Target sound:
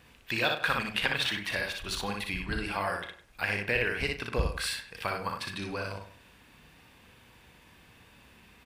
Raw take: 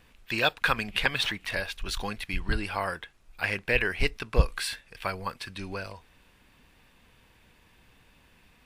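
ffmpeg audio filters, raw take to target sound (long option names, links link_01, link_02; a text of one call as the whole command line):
ffmpeg -i in.wav -filter_complex "[0:a]asplit=2[link_01][link_02];[link_02]aecho=0:1:34|60:0.266|0.668[link_03];[link_01][link_03]amix=inputs=2:normalize=0,acompressor=threshold=-37dB:ratio=1.5,highpass=58,asplit=2[link_04][link_05];[link_05]adelay=99,lowpass=frequency=2600:poles=1,volume=-11dB,asplit=2[link_06][link_07];[link_07]adelay=99,lowpass=frequency=2600:poles=1,volume=0.28,asplit=2[link_08][link_09];[link_09]adelay=99,lowpass=frequency=2600:poles=1,volume=0.28[link_10];[link_06][link_08][link_10]amix=inputs=3:normalize=0[link_11];[link_04][link_11]amix=inputs=2:normalize=0,volume=2dB" out.wav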